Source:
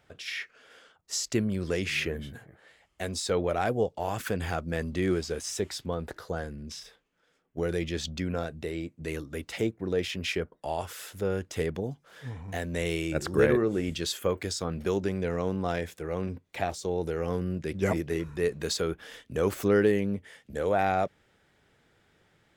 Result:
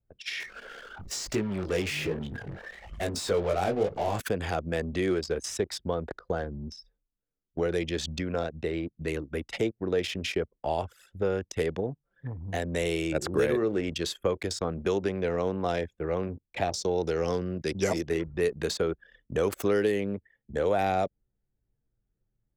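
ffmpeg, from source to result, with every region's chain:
ffmpeg -i in.wav -filter_complex "[0:a]asettb=1/sr,asplit=3[link_01][link_02][link_03];[link_01]atrim=end=0.404[link_04];[link_02]atrim=start=0.4:end=4.2,asetpts=PTS-STARTPTS,afade=type=in:duration=0.004:curve=qsin,afade=type=out:start_time=3.796:duration=0.004:curve=qsin,aeval=exprs='val(0)+0.5*0.0224*sgn(val(0))':channel_layout=same,flanger=delay=18.5:depth=3.5:speed=1.1[link_05];[link_03]atrim=start=4.196[link_06];[link_04][link_05]acrossfade=duration=0.004:curve1=hsin:curve2=qsin[link_07];[link_07][link_06]acrossfade=duration=0.004:curve1=qsin:curve2=hsin,asettb=1/sr,asplit=3[link_08][link_09][link_10];[link_08]atrim=end=16.724[link_11];[link_09]atrim=start=16.72:end=18.09,asetpts=PTS-STARTPTS,afade=type=in:duration=0.004:curve=qsin,afade=type=out:start_time=1.366:duration=0.004:curve=qsin,highpass=60,equalizer=frequency=5300:width=1.3:gain=12.5[link_12];[link_10]atrim=start=18.086[link_13];[link_11][link_12]acrossfade=duration=0.004:curve1=hsin:curve2=qsin[link_14];[link_14][link_13]acrossfade=duration=0.004:curve1=qsin:curve2=hsin,anlmdn=1.58,acrossover=split=360|910|2600[link_15][link_16][link_17][link_18];[link_15]acompressor=threshold=-38dB:ratio=4[link_19];[link_16]acompressor=threshold=-30dB:ratio=4[link_20];[link_17]acompressor=threshold=-46dB:ratio=4[link_21];[link_18]acompressor=threshold=-40dB:ratio=4[link_22];[link_19][link_20][link_21][link_22]amix=inputs=4:normalize=0,volume=5dB" out.wav

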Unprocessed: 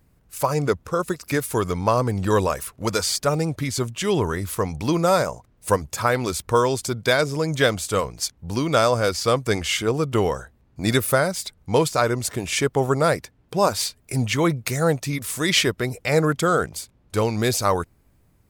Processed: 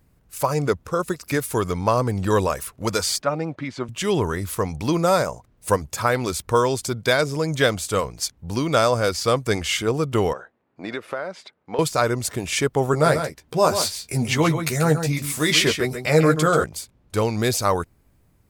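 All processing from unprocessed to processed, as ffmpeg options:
ffmpeg -i in.wav -filter_complex "[0:a]asettb=1/sr,asplit=3[link_01][link_02][link_03];[link_01]atrim=end=3.224[link_04];[link_02]atrim=start=3.22:end=3.89,asetpts=PTS-STARTPTS,afade=type=in:duration=0.004:curve=qsin,afade=type=out:start_time=0.666:duration=0.004:curve=qsin,highpass=210,lowpass=2500,bandreject=frequency=430:width=5.1[link_05];[link_03]atrim=start=3.886[link_06];[link_04][link_05]acrossfade=duration=0.004:curve1=hsin:curve2=qsin[link_07];[link_07][link_06]acrossfade=duration=0.004:curve1=qsin:curve2=hsin,asettb=1/sr,asplit=3[link_08][link_09][link_10];[link_08]atrim=end=10.334[link_11];[link_09]atrim=start=10.33:end=11.79,asetpts=PTS-STARTPTS,afade=type=in:duration=0.004:curve=qsin,afade=type=out:start_time=1.456:duration=0.004:curve=qsin,highpass=330,lowpass=2400,acompressor=threshold=-26dB:ratio=3:attack=3.2:release=140:knee=1:detection=peak[link_12];[link_10]atrim=start=11.786[link_13];[link_11][link_12]acrossfade=duration=0.004:curve1=hsin:curve2=qsin[link_14];[link_14][link_13]acrossfade=duration=0.004:curve1=qsin:curve2=hsin,asettb=1/sr,asplit=3[link_15][link_16][link_17];[link_15]atrim=end=12.924[link_18];[link_16]atrim=start=12.92:end=16.64,asetpts=PTS-STARTPTS,afade=type=in:duration=0.004:curve=qsin,afade=type=out:start_time=3.716:duration=0.004:curve=qsin,asplit=2[link_19][link_20];[link_20]adelay=13,volume=-5dB[link_21];[link_19][link_21]amix=inputs=2:normalize=0,atrim=end_sample=164052,aecho=1:1:137:0.376,atrim=end_sample=164052[link_22];[link_17]atrim=start=16.636[link_23];[link_18][link_22]acrossfade=duration=0.004:curve1=hsin:curve2=qsin[link_24];[link_24][link_23]acrossfade=duration=0.004:curve1=qsin:curve2=hsin" out.wav

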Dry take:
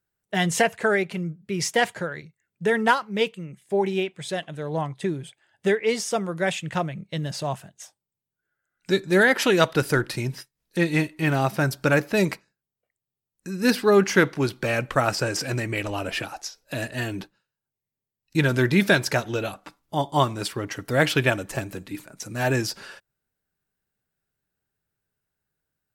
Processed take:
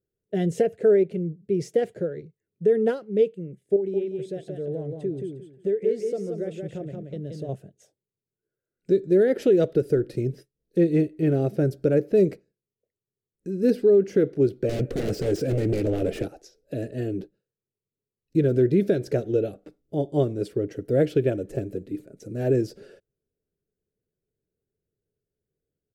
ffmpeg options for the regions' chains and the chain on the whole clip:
ffmpeg -i in.wav -filter_complex "[0:a]asettb=1/sr,asplit=3[link_01][link_02][link_03];[link_01]atrim=end=3.764[link_04];[link_02]atrim=start=3.76:end=7.49,asetpts=PTS-STARTPTS,afade=type=in:duration=0.004:curve=qsin,afade=type=out:start_time=3.726:duration=0.004:curve=qsin,acompressor=threshold=-34dB:ratio=2:attack=3.2:release=140:knee=1:detection=peak,aecho=1:1:177|354|531:0.596|0.143|0.0343,atrim=end_sample=164493[link_05];[link_03]atrim=start=7.486[link_06];[link_04][link_05]acrossfade=duration=0.004:curve1=hsin:curve2=qsin[link_07];[link_07][link_06]acrossfade=duration=0.004:curve1=qsin:curve2=hsin,asettb=1/sr,asplit=3[link_08][link_09][link_10];[link_08]atrim=end=14.694[link_11];[link_09]atrim=start=14.69:end=16.28,asetpts=PTS-STARTPTS,afade=type=in:duration=0.004:curve=qsin,afade=type=out:start_time=1.586:duration=0.004:curve=qsin,acontrast=81,aeval=exprs='0.119*(abs(mod(val(0)/0.119+3,4)-2)-1)':channel_layout=same[link_12];[link_10]atrim=start=16.276[link_13];[link_11][link_12]acrossfade=duration=0.004:curve1=hsin:curve2=qsin[link_14];[link_14][link_13]acrossfade=duration=0.004:curve1=qsin:curve2=hsin,firequalizer=gain_entry='entry(240,0);entry(430,9);entry(980,-27);entry(1400,-17)':delay=0.05:min_phase=1,alimiter=limit=-11dB:level=0:latency=1:release=199" out.wav

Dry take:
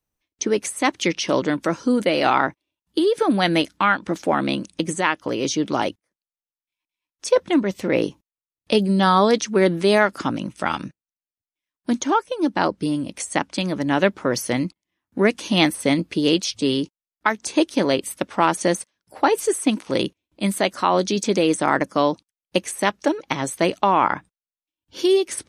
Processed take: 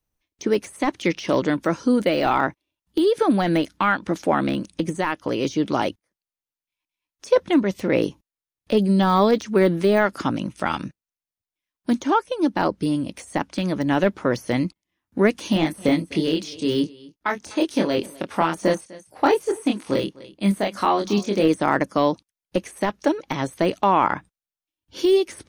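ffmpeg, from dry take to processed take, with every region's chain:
ffmpeg -i in.wav -filter_complex "[0:a]asettb=1/sr,asplit=3[link_01][link_02][link_03];[link_01]atrim=end=15.534[link_04];[link_02]atrim=start=15.53:end=21.48,asetpts=PTS-STARTPTS,afade=type=in:duration=0.004:curve=qsin,afade=type=out:start_time=5.946:duration=0.004:curve=qsin,aecho=1:1:251:0.0794,atrim=end_sample=262395,tremolo=f=3.2:d=0.48,asplit=2[link_05][link_06];[link_06]adelay=25,volume=-4dB[link_07];[link_05][link_07]amix=inputs=2:normalize=0,atrim=end_sample=262395[link_08];[link_03]atrim=start=21.476[link_09];[link_04][link_08]acrossfade=duration=0.004:curve1=hsin:curve2=qsin[link_10];[link_10][link_09]acrossfade=duration=0.004:curve1=qsin:curve2=hsin,deesser=0.75,lowshelf=frequency=81:gain=6.5,bandreject=frequency=7700:width=18" out.wav

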